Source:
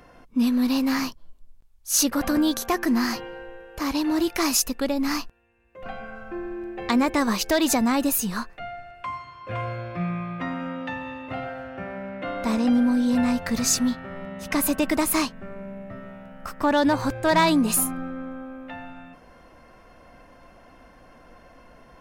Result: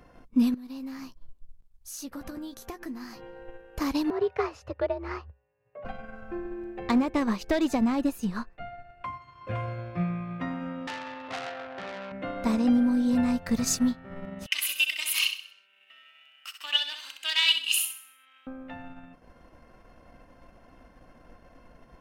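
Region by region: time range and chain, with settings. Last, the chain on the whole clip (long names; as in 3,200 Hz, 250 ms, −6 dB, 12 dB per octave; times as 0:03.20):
0:00.54–0:03.48: double-tracking delay 15 ms −10 dB + downward compressor 3 to 1, threshold −37 dBFS
0:04.10–0:05.85: low-pass filter 1,900 Hz + low shelf with overshoot 320 Hz −6 dB, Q 3 + frequency shifter +66 Hz
0:06.79–0:09.22: low-pass filter 3,200 Hz 6 dB per octave + hard clipping −16.5 dBFS
0:10.87–0:12.12: high-pass filter 240 Hz 6 dB per octave + parametric band 940 Hz +9.5 dB 2.4 octaves + saturating transformer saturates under 4,000 Hz
0:14.46–0:18.47: high-pass with resonance 2,900 Hz, resonance Q 11 + repeating echo 64 ms, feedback 50%, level −5 dB
whole clip: low-shelf EQ 390 Hz +5.5 dB; transient designer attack +4 dB, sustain −6 dB; level −6.5 dB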